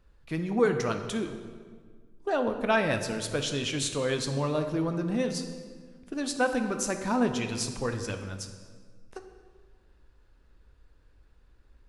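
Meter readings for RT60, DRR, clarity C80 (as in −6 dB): 1.7 s, 6.0 dB, 9.5 dB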